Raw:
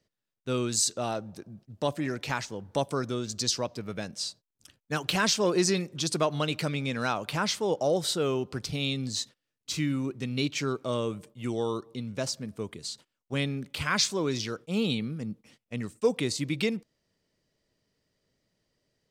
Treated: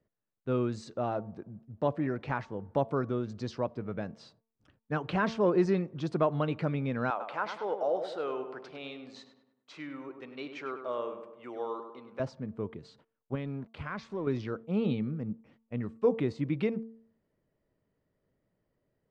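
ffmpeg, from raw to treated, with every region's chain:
-filter_complex "[0:a]asettb=1/sr,asplit=3[a][b][c];[a]atrim=end=7.104[d];[b]atrim=start=7.1:end=12.2,asetpts=PTS-STARTPTS,afade=t=in:d=0.004:c=qsin,afade=t=out:st=5.096:d=0.004:c=qsin,highpass=590,asplit=2[e][f];[f]adelay=100,lowpass=f=2.2k:p=1,volume=-7.5dB,asplit=2[g][h];[h]adelay=100,lowpass=f=2.2k:p=1,volume=0.53,asplit=2[i][j];[j]adelay=100,lowpass=f=2.2k:p=1,volume=0.53,asplit=2[k][l];[l]adelay=100,lowpass=f=2.2k:p=1,volume=0.53,asplit=2[m][n];[n]adelay=100,lowpass=f=2.2k:p=1,volume=0.53,asplit=2[o][p];[p]adelay=100,lowpass=f=2.2k:p=1,volume=0.53[q];[e][g][i][k][m][o][q]amix=inputs=7:normalize=0,atrim=end_sample=224910[r];[c]atrim=start=12.196[s];[d][r]acrossfade=d=0.004:c1=hsin:c2=qsin[t];[t][s]acrossfade=d=0.004:c1=qsin:c2=hsin,asettb=1/sr,asplit=3[u][v][w];[u]atrim=end=13.354[x];[v]atrim=start=13.35:end=14.27,asetpts=PTS-STARTPTS,afade=t=in:d=0.004:c=qsin,afade=t=out:st=0.916:d=0.004:c=qsin,acompressor=threshold=-34dB:ratio=2:attack=3.2:release=140:knee=1:detection=peak,aeval=exprs='sgn(val(0))*max(abs(val(0))-0.00282,0)':c=same[y];[w]atrim=start=14.266[z];[x][y]acrossfade=d=0.004:c1=hsin:c2=qsin[aa];[aa][z]acrossfade=d=0.004:c1=qsin:c2=hsin,lowpass=1.4k,bandreject=f=225.4:t=h:w=4,bandreject=f=450.8:t=h:w=4,bandreject=f=676.2:t=h:w=4,bandreject=f=901.6:t=h:w=4,bandreject=f=1.127k:t=h:w=4"

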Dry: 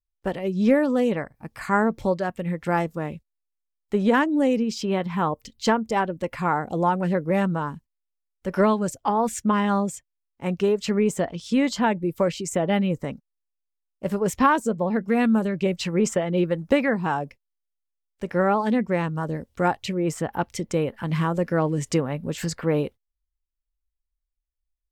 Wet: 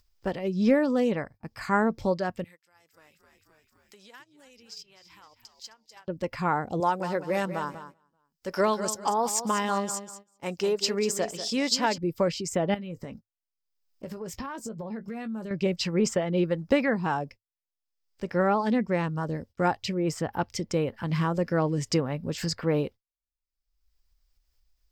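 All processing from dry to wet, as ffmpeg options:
-filter_complex "[0:a]asettb=1/sr,asplit=3[a][b][c];[a]atrim=end=2.444[d];[b]atrim=start=2.44:end=6.08,asetpts=PTS-STARTPTS,afade=t=in:d=0.004:c=qsin,afade=t=out:st=3.636:d=0.004:c=qsin,aderivative,acompressor=threshold=-44dB:ratio=3:attack=3.2:release=140:knee=1:detection=peak,asplit=6[e][f][g][h][i][j];[f]adelay=261,afreqshift=-75,volume=-12dB[k];[g]adelay=522,afreqshift=-150,volume=-18.2dB[l];[h]adelay=783,afreqshift=-225,volume=-24.4dB[m];[i]adelay=1044,afreqshift=-300,volume=-30.6dB[n];[j]adelay=1305,afreqshift=-375,volume=-36.8dB[o];[e][k][l][m][n][o]amix=inputs=6:normalize=0,atrim=end_sample=160524[p];[c]atrim=start=6.076[q];[d][p]acrossfade=d=0.004:c1=hsin:c2=qsin[r];[r][q]acrossfade=d=0.004:c1=qsin:c2=hsin,asettb=1/sr,asplit=3[s][t][u];[s]atrim=end=6.804[v];[t]atrim=start=6.8:end=11.98,asetpts=PTS-STARTPTS,afade=t=in:d=0.004:c=qsin,afade=t=out:st=5.176:d=0.004:c=qsin,bass=f=250:g=-11,treble=f=4k:g=9,aecho=1:1:193|386|579:0.266|0.0745|0.0209,atrim=end_sample=228438[w];[u]atrim=start=11.976[x];[v][w]acrossfade=d=0.004:c1=hsin:c2=qsin[y];[y][x]acrossfade=d=0.004:c1=qsin:c2=hsin,asettb=1/sr,asplit=3[z][aa][ab];[z]atrim=end=12.744[ac];[aa]atrim=start=12.74:end=15.51,asetpts=PTS-STARTPTS,afade=t=in:d=0.004:c=qsin,afade=t=out:st=2.766:d=0.004:c=qsin,highshelf=f=9.5k:g=4.5,acompressor=threshold=-30dB:ratio=10:attack=3.2:release=140:knee=1:detection=peak,asplit=2[ad][ae];[ae]adelay=18,volume=-11.5dB[af];[ad][af]amix=inputs=2:normalize=0,atrim=end_sample=122157[ag];[ab]atrim=start=15.506[ah];[ac][ag]acrossfade=d=0.004:c1=hsin:c2=qsin[ai];[ai][ah]acrossfade=d=0.004:c1=qsin:c2=hsin,agate=range=-18dB:threshold=-43dB:ratio=16:detection=peak,acompressor=mode=upward:threshold=-37dB:ratio=2.5,equalizer=f=100:t=o:w=0.33:g=6,equalizer=f=5k:t=o:w=0.33:g=10,equalizer=f=10k:t=o:w=0.33:g=-8,volume=-3dB"

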